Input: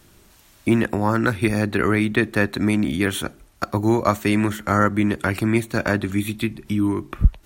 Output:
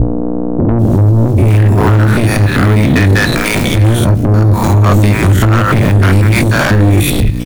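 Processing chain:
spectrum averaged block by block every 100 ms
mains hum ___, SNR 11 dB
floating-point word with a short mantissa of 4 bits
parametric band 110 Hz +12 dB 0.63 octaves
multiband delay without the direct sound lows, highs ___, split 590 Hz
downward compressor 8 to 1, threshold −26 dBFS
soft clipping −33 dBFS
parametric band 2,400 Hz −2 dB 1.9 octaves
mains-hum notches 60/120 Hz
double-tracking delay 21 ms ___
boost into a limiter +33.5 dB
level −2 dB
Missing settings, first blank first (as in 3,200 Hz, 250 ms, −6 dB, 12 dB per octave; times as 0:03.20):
60 Hz, 790 ms, −13 dB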